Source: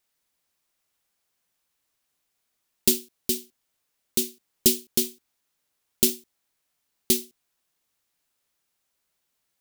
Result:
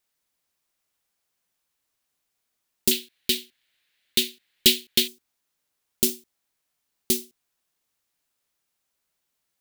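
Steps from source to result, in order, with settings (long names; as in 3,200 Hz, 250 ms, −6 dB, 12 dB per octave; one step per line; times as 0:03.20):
0:02.91–0:05.08: flat-topped bell 2,600 Hz +14 dB
level −1.5 dB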